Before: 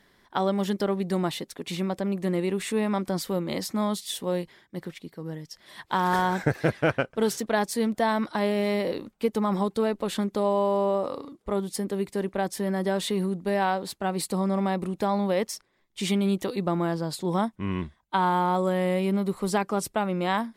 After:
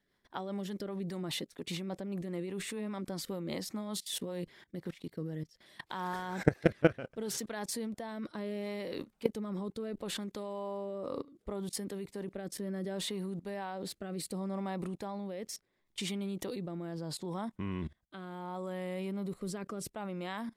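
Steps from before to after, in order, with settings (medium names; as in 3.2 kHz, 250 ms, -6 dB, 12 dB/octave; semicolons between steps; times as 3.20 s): level held to a coarse grid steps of 20 dB; rotary cabinet horn 5 Hz, later 0.7 Hz, at 4.26 s; trim +4 dB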